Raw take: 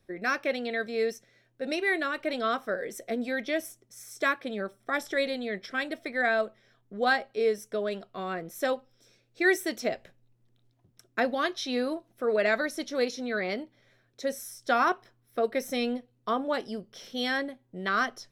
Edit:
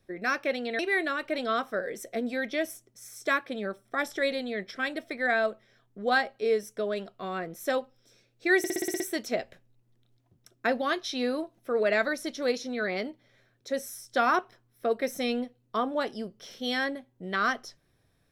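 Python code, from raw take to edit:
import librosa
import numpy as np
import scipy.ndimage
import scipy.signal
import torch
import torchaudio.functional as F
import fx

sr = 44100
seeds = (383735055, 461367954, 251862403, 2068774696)

y = fx.edit(x, sr, fx.cut(start_s=0.79, length_s=0.95),
    fx.stutter(start_s=9.53, slice_s=0.06, count=8), tone=tone)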